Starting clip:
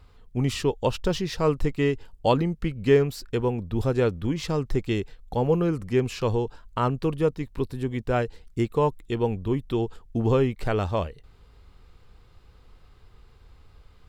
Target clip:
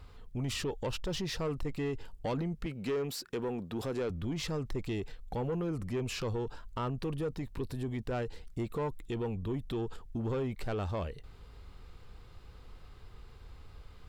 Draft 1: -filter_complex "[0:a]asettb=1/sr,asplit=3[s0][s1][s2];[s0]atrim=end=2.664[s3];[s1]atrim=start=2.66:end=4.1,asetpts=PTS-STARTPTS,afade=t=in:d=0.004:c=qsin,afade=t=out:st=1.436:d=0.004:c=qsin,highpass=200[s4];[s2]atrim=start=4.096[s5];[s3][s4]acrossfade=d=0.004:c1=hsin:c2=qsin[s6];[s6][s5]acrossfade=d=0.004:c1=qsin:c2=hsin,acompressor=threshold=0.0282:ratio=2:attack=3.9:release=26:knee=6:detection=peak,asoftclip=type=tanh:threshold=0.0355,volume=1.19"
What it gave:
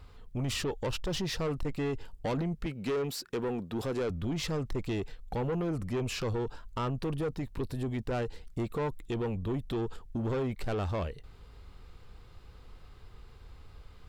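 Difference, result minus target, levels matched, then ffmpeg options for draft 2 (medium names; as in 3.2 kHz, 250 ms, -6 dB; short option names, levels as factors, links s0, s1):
compression: peak gain reduction -4 dB
-filter_complex "[0:a]asettb=1/sr,asplit=3[s0][s1][s2];[s0]atrim=end=2.664[s3];[s1]atrim=start=2.66:end=4.1,asetpts=PTS-STARTPTS,afade=t=in:d=0.004:c=qsin,afade=t=out:st=1.436:d=0.004:c=qsin,highpass=200[s4];[s2]atrim=start=4.096[s5];[s3][s4]acrossfade=d=0.004:c1=hsin:c2=qsin[s6];[s6][s5]acrossfade=d=0.004:c1=qsin:c2=hsin,acompressor=threshold=0.0106:ratio=2:attack=3.9:release=26:knee=6:detection=peak,asoftclip=type=tanh:threshold=0.0355,volume=1.19"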